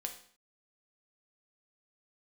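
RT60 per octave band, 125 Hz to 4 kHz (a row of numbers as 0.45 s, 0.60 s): 0.50 s, 0.55 s, 0.50 s, 0.55 s, 0.55 s, 0.50 s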